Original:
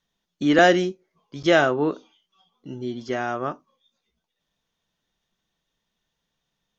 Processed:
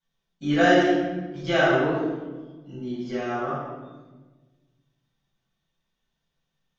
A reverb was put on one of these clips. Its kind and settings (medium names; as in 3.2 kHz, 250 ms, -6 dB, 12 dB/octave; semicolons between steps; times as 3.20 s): simulated room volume 920 m³, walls mixed, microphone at 7.7 m; trim -15.5 dB